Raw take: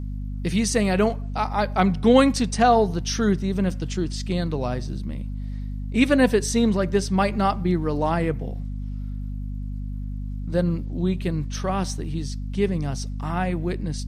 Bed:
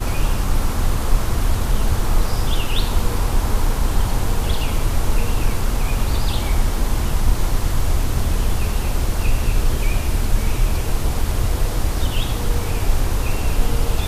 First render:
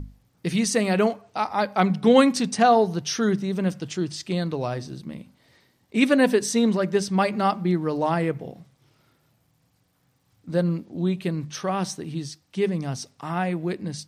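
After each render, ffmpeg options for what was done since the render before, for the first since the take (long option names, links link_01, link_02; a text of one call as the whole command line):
ffmpeg -i in.wav -af "bandreject=frequency=50:width_type=h:width=6,bandreject=frequency=100:width_type=h:width=6,bandreject=frequency=150:width_type=h:width=6,bandreject=frequency=200:width_type=h:width=6,bandreject=frequency=250:width_type=h:width=6" out.wav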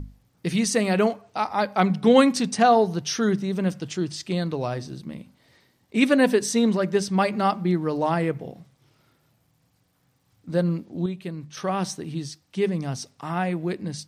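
ffmpeg -i in.wav -filter_complex "[0:a]asplit=3[link_01][link_02][link_03];[link_01]atrim=end=11.062[link_04];[link_02]atrim=start=11.058:end=11.572,asetpts=PTS-STARTPTS,volume=-6.5dB[link_05];[link_03]atrim=start=11.568[link_06];[link_04][link_05]acrossfade=duration=0.004:curve1=hsin:curve2=hsin[link_07];[link_07][link_06]acrossfade=duration=0.004:curve1=hsin:curve2=hsin" out.wav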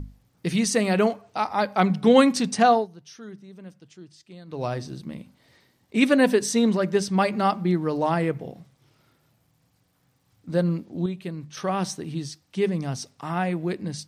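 ffmpeg -i in.wav -filter_complex "[0:a]asplit=3[link_01][link_02][link_03];[link_01]atrim=end=2.88,asetpts=PTS-STARTPTS,afade=type=out:start_time=2.7:duration=0.18:silence=0.11885[link_04];[link_02]atrim=start=2.88:end=4.47,asetpts=PTS-STARTPTS,volume=-18.5dB[link_05];[link_03]atrim=start=4.47,asetpts=PTS-STARTPTS,afade=type=in:duration=0.18:silence=0.11885[link_06];[link_04][link_05][link_06]concat=n=3:v=0:a=1" out.wav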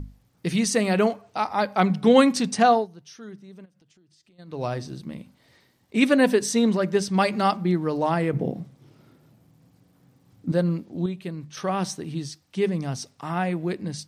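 ffmpeg -i in.wav -filter_complex "[0:a]asplit=3[link_01][link_02][link_03];[link_01]afade=type=out:start_time=3.64:duration=0.02[link_04];[link_02]acompressor=threshold=-56dB:ratio=12:attack=3.2:release=140:knee=1:detection=peak,afade=type=in:start_time=3.64:duration=0.02,afade=type=out:start_time=4.38:duration=0.02[link_05];[link_03]afade=type=in:start_time=4.38:duration=0.02[link_06];[link_04][link_05][link_06]amix=inputs=3:normalize=0,asettb=1/sr,asplit=3[link_07][link_08][link_09];[link_07]atrim=end=7.144[link_10];[link_08]atrim=start=7.14:end=7.57,asetpts=PTS-STARTPTS,afade=type=in:duration=0.004:curve=qsin,afade=type=out:start_time=0.426:duration=0.004:curve=qsin,equalizer=frequency=6000:width_type=o:width=2.3:gain=5[link_11];[link_09]atrim=start=7.566[link_12];[link_10][link_11]acrossfade=duration=0.004:curve1=hsin:curve2=qsin[link_13];[link_13][link_12]acrossfade=duration=0.004:curve1=qsin:curve2=hsin,asettb=1/sr,asplit=3[link_14][link_15][link_16];[link_14]atrim=end=8.334[link_17];[link_15]atrim=start=8.33:end=10.52,asetpts=PTS-STARTPTS,afade=type=in:duration=0.004:curve=qsin,afade=type=out:start_time=2.186:duration=0.004:curve=qsin,equalizer=frequency=240:width=0.45:gain=12.5[link_18];[link_16]atrim=start=10.516[link_19];[link_17][link_18]acrossfade=duration=0.004:curve1=hsin:curve2=qsin[link_20];[link_20][link_19]acrossfade=duration=0.004:curve1=qsin:curve2=hsin" out.wav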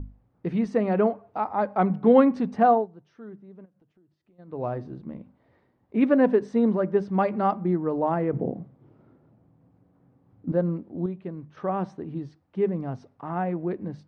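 ffmpeg -i in.wav -af "lowpass=1100,equalizer=frequency=150:width_type=o:width=0.73:gain=-4.5" out.wav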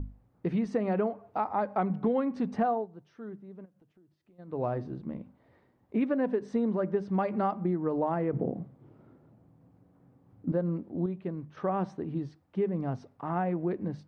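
ffmpeg -i in.wav -af "acompressor=threshold=-25dB:ratio=6" out.wav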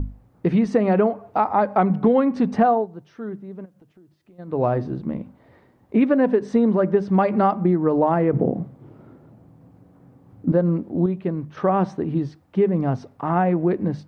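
ffmpeg -i in.wav -af "volume=10.5dB" out.wav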